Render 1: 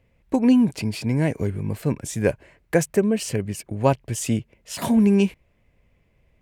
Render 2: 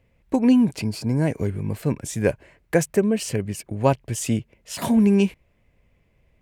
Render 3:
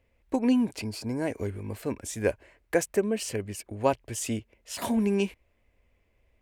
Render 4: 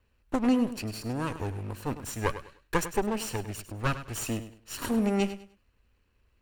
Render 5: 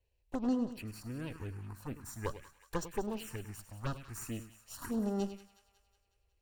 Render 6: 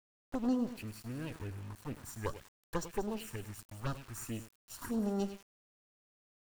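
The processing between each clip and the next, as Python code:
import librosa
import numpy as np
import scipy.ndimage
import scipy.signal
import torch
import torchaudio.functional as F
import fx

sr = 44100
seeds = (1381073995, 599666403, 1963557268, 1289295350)

y1 = fx.spec_box(x, sr, start_s=0.86, length_s=0.41, low_hz=1700.0, high_hz=4000.0, gain_db=-9)
y2 = fx.peak_eq(y1, sr, hz=150.0, db=-14.5, octaves=0.7)
y2 = F.gain(torch.from_numpy(y2), -4.0).numpy()
y3 = fx.lower_of_two(y2, sr, delay_ms=0.71)
y3 = fx.echo_feedback(y3, sr, ms=101, feedback_pct=26, wet_db=-12.5)
y4 = fx.env_phaser(y3, sr, low_hz=220.0, high_hz=2300.0, full_db=-23.5)
y4 = fx.echo_wet_highpass(y4, sr, ms=183, feedback_pct=56, hz=1400.0, wet_db=-13.0)
y4 = F.gain(torch.from_numpy(y4), -7.5).numpy()
y5 = np.where(np.abs(y4) >= 10.0 ** (-50.0 / 20.0), y4, 0.0)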